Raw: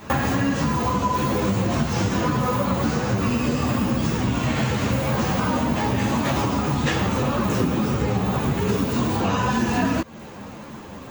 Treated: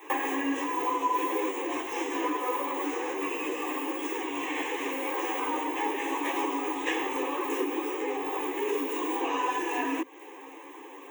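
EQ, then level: Chebyshev high-pass 270 Hz, order 10; fixed phaser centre 930 Hz, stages 8; -2.0 dB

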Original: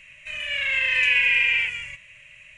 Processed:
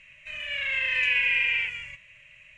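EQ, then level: air absorption 62 m; -3.5 dB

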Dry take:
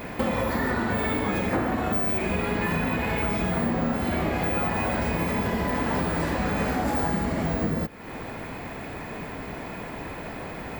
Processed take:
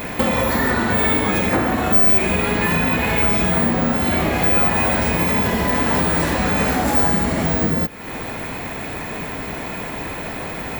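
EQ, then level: high shelf 2900 Hz +8 dB; notch 4800 Hz, Q 15; +6.0 dB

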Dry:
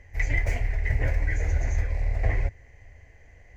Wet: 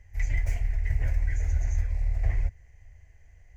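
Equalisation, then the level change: graphic EQ 125/250/500/1000/2000/4000 Hz -3/-11/-10/-6/-7/-6 dB; 0.0 dB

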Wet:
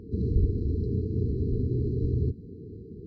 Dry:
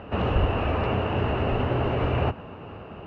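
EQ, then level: dynamic EQ 410 Hz, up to -4 dB, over -38 dBFS, Q 0.98; brick-wall FIR band-stop 470–3900 Hz; high shelf 3500 Hz -10 dB; 0.0 dB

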